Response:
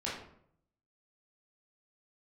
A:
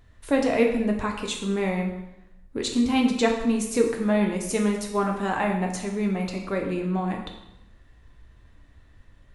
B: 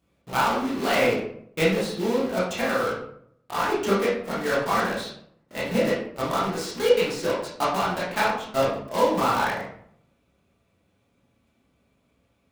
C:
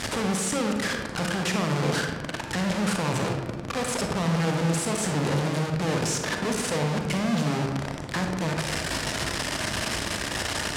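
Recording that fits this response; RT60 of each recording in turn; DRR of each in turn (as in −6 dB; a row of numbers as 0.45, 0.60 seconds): B; 0.85, 0.65, 1.3 seconds; 1.5, −7.5, 2.5 decibels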